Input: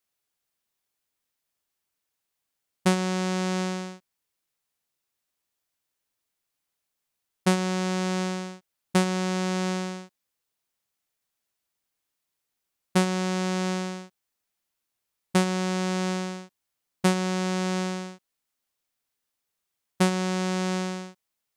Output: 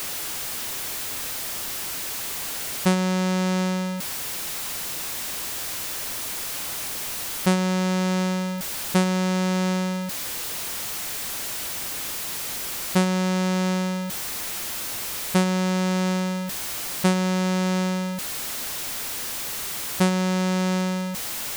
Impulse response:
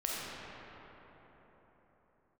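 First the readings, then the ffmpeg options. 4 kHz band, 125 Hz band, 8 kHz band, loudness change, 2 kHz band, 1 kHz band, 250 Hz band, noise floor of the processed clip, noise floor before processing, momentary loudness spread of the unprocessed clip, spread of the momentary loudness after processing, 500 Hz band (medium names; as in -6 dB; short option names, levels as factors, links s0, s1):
+6.5 dB, +4.5 dB, +10.5 dB, +2.0 dB, +4.0 dB, +3.0 dB, +4.5 dB, -31 dBFS, -83 dBFS, 11 LU, 5 LU, +2.5 dB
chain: -af "aeval=exprs='val(0)+0.5*0.0631*sgn(val(0))':c=same"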